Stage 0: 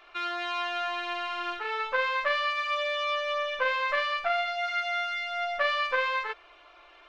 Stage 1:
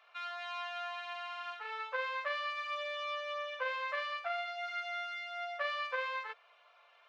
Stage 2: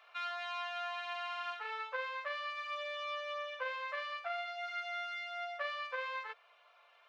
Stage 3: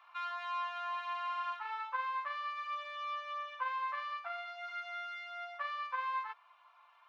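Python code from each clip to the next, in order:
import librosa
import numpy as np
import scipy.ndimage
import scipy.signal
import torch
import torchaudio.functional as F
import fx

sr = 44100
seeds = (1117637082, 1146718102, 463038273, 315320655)

y1 = scipy.signal.sosfilt(scipy.signal.ellip(4, 1.0, 40, 470.0, 'highpass', fs=sr, output='sos'), x)
y1 = F.gain(torch.from_numpy(y1), -9.0).numpy()
y2 = fx.rider(y1, sr, range_db=10, speed_s=0.5)
y2 = F.gain(torch.from_numpy(y2), -1.5).numpy()
y3 = fx.highpass_res(y2, sr, hz=970.0, q=4.9)
y3 = F.gain(torch.from_numpy(y3), -5.5).numpy()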